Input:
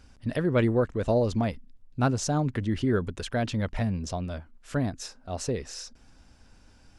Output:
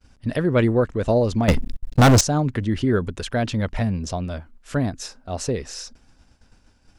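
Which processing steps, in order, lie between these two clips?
expander -48 dBFS; 1.48–2.21 sample leveller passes 5; gain +5 dB

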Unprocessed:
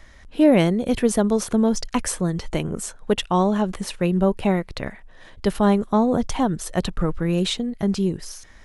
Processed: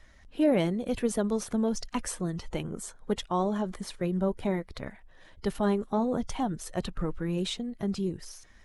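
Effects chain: bin magnitudes rounded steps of 15 dB; 2.67–4.84 notch 2700 Hz, Q 7.1; gain -8.5 dB

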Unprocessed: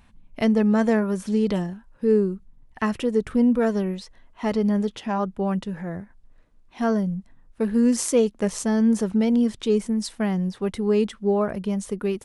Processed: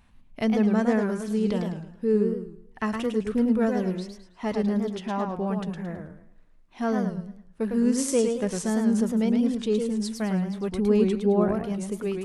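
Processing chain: 10.72–11.55 low shelf 280 Hz +8.5 dB; warbling echo 0.108 s, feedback 33%, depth 166 cents, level -5 dB; gain -4 dB

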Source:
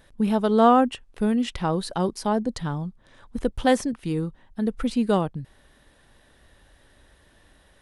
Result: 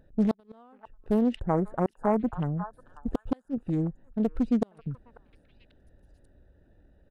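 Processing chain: Wiener smoothing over 41 samples; flipped gate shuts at -13 dBFS, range -38 dB; spectral gain 1.51–3.34, 1800–6500 Hz -23 dB; tempo 1.1×; delay with a stepping band-pass 0.541 s, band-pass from 1100 Hz, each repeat 1.4 oct, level -8 dB; Doppler distortion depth 0.45 ms

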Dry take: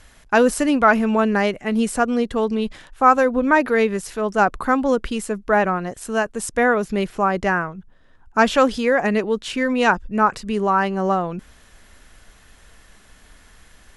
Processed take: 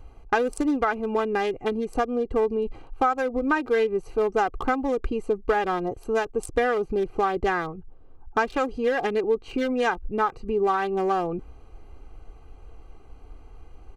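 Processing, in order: Wiener smoothing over 25 samples; compressor 12:1, threshold -23 dBFS, peak gain reduction 16 dB; comb 2.5 ms, depth 64%; gain +2.5 dB

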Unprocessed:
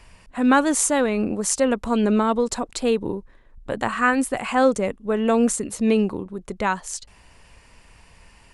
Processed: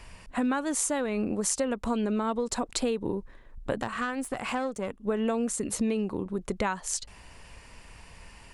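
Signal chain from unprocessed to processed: compressor 12:1, threshold -26 dBFS, peak gain reduction 15 dB; 3.81–5.07 tube stage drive 22 dB, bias 0.65; gain +1.5 dB

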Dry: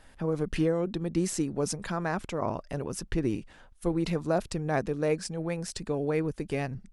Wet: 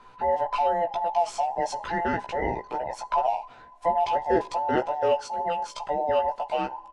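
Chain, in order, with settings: band inversion scrambler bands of 1000 Hz; air absorption 120 m; doubler 16 ms -3.5 dB; two-slope reverb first 0.41 s, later 3.6 s, from -20 dB, DRR 19 dB; gain +2 dB

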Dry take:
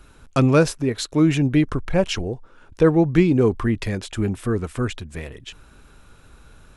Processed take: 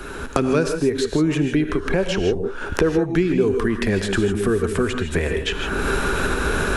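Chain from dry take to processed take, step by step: recorder AGC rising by 32 dB/s; thirty-one-band EQ 125 Hz -10 dB, 400 Hz +9 dB, 1600 Hz +6 dB; non-linear reverb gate 0.18 s rising, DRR 6.5 dB; three-band squash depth 70%; gain -4.5 dB

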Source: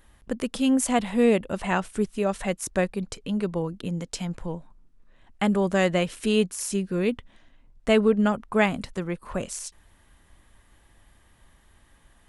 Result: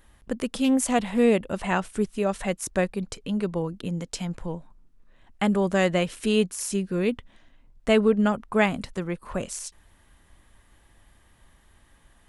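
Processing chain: 0.64–1.19 Doppler distortion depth 0.11 ms

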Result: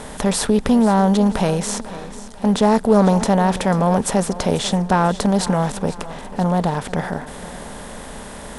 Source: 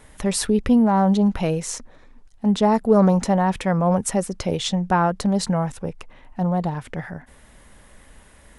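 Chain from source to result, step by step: per-bin compression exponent 0.6; thinning echo 0.492 s, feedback 46%, high-pass 160 Hz, level -15.5 dB

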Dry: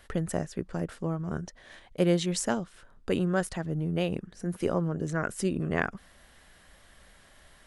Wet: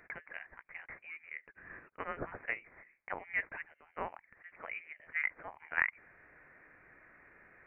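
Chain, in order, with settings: steep high-pass 1200 Hz 36 dB/oct; inverted band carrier 3500 Hz; gain +1.5 dB

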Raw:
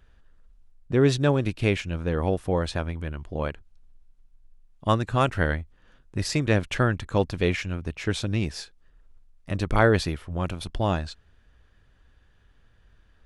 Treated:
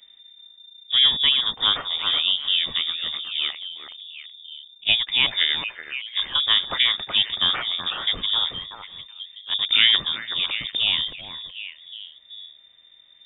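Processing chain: harmoniser +3 st -15 dB; delay with a stepping band-pass 0.375 s, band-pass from 2700 Hz, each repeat -1.4 oct, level -4 dB; inverted band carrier 3600 Hz; gain +1.5 dB

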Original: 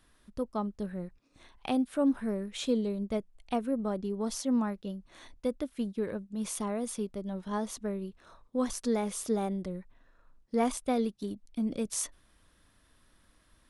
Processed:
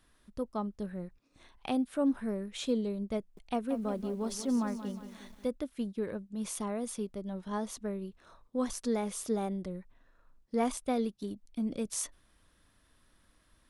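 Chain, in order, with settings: 3.19–5.47 lo-fi delay 0.18 s, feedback 55%, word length 9-bit, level -11 dB; gain -2 dB

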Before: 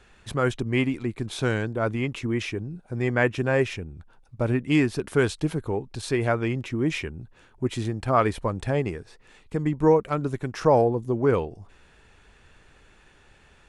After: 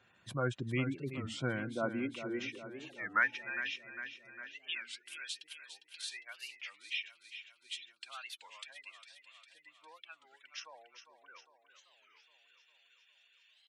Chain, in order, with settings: low shelf 270 Hz -10.5 dB; spectral gate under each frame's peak -20 dB strong; high-pass sweep 120 Hz -> 3000 Hz, 1.44–3.71; notch comb 430 Hz; feedback echo 0.404 s, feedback 60%, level -10.5 dB; 2.98–3.58 whine 860 Hz -55 dBFS; record warp 33 1/3 rpm, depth 250 cents; gain -7.5 dB

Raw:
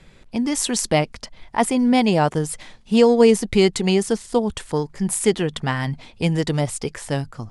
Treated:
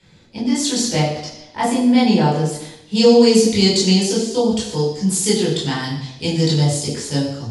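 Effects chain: resonant high shelf 3100 Hz +6.5 dB, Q 1.5, from 2.95 s +12.5 dB; reverb RT60 0.85 s, pre-delay 15 ms, DRR -7.5 dB; gain -16.5 dB

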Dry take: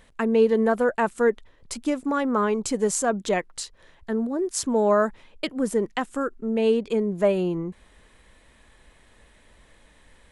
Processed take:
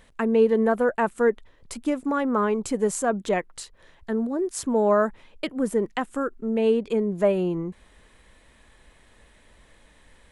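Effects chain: dynamic EQ 5400 Hz, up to -7 dB, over -47 dBFS, Q 0.86

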